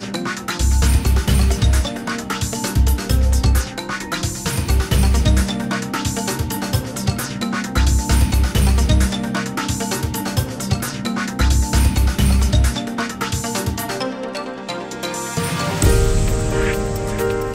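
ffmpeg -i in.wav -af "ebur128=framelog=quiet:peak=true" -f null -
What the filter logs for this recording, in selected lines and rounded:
Integrated loudness:
  I:         -19.4 LUFS
  Threshold: -29.4 LUFS
Loudness range:
  LRA:         2.4 LU
  Threshold: -39.5 LUFS
  LRA low:   -20.9 LUFS
  LRA high:  -18.6 LUFS
True peak:
  Peak:       -3.2 dBFS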